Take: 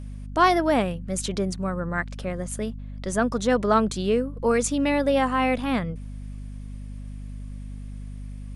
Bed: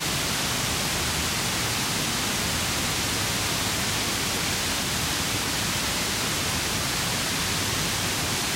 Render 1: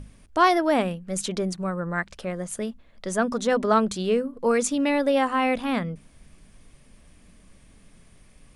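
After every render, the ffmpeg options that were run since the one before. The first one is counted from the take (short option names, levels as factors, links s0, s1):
-af "bandreject=f=50:t=h:w=6,bandreject=f=100:t=h:w=6,bandreject=f=150:t=h:w=6,bandreject=f=200:t=h:w=6,bandreject=f=250:t=h:w=6"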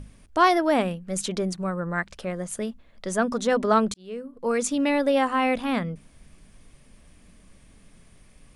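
-filter_complex "[0:a]asplit=2[s0][s1];[s0]atrim=end=3.94,asetpts=PTS-STARTPTS,afade=t=out:st=3.936:d=0.004:c=hsin[s2];[s1]atrim=start=3.94,asetpts=PTS-STARTPTS,afade=t=in:d=0.83[s3];[s2][s3]concat=n=2:v=0:a=1"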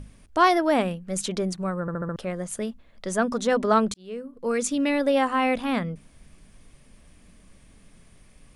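-filter_complex "[0:a]asettb=1/sr,asplit=3[s0][s1][s2];[s0]atrim=end=4.344[s3];[s1]atrim=start=4.34:end=5.01,asetpts=PTS-STARTPTS,afade=t=in:d=0.004:c=qsin,afade=t=out:st=0.666:d=0.004:c=qsin,equalizer=f=850:t=o:w=0.77:g=-5.5[s4];[s2]atrim=start=5.006[s5];[s3][s4]acrossfade=d=0.004:c1=hsin:c2=qsin[s6];[s6][s5]acrossfade=d=0.004:c1=qsin:c2=hsin,asplit=6[s7][s8][s9][s10][s11][s12];[s7]atrim=end=1.882[s13];[s8]atrim=start=1.808:end=1.882[s14];[s9]atrim=start=1.808:end=1.882[s15];[s10]atrim=start=1.808:end=1.882[s16];[s11]atrim=start=1.808:end=1.882[s17];[s12]atrim=start=2.158[s18];[s13][s14]acrossfade=d=0.004:c1=hsin:c2=hsin[s19];[s19][s15]acrossfade=d=0.004:c1=hsin:c2=hsin[s20];[s20][s16]acrossfade=d=0.004:c1=hsin:c2=hsin[s21];[s21][s17]acrossfade=d=0.004:c1=hsin:c2=hsin[s22];[s22][s18]acrossfade=d=0.004:c1=hsin:c2=hsin"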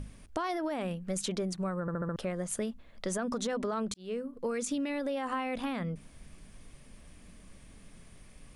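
-af "alimiter=limit=0.112:level=0:latency=1:release=48,acompressor=threshold=0.0316:ratio=6"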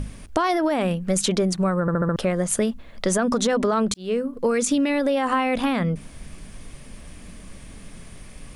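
-af "volume=3.98"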